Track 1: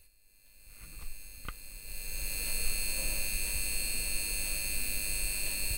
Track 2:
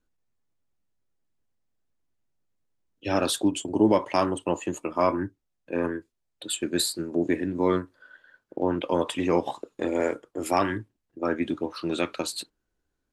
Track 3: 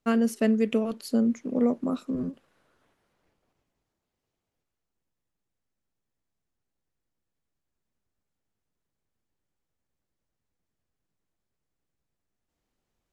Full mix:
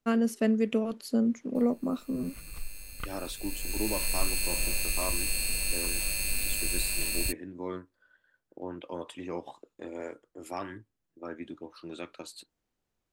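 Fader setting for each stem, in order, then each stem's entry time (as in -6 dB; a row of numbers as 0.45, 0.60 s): +3.0, -13.5, -2.5 dB; 1.55, 0.00, 0.00 s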